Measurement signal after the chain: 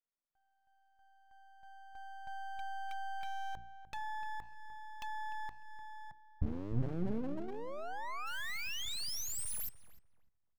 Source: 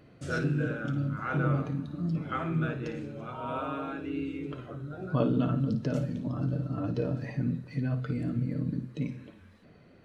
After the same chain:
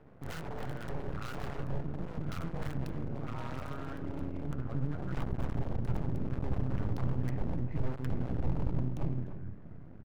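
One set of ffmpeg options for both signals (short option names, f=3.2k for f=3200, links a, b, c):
-filter_complex "[0:a]bandreject=f=60:t=h:w=6,bandreject=f=120:t=h:w=6,bandreject=f=180:t=h:w=6,bandreject=f=240:t=h:w=6,bandreject=f=300:t=h:w=6,bandreject=f=360:t=h:w=6,acrossover=split=340|1800[a][b][c];[c]acrusher=bits=6:mix=0:aa=0.000001[d];[a][b][d]amix=inputs=3:normalize=0,acrossover=split=160[e][f];[f]acompressor=threshold=-39dB:ratio=8[g];[e][g]amix=inputs=2:normalize=0,aeval=exprs='0.015*(abs(mod(val(0)/0.015+3,4)-2)-1)':c=same,asubboost=boost=5.5:cutoff=160,aeval=exprs='max(val(0),0)':c=same,asplit=2[h][i];[i]adelay=299,lowpass=f=1.9k:p=1,volume=-11.5dB,asplit=2[j][k];[k]adelay=299,lowpass=f=1.9k:p=1,volume=0.25,asplit=2[l][m];[m]adelay=299,lowpass=f=1.9k:p=1,volume=0.25[n];[j][l][n]amix=inputs=3:normalize=0[o];[h][o]amix=inputs=2:normalize=0,volume=4dB"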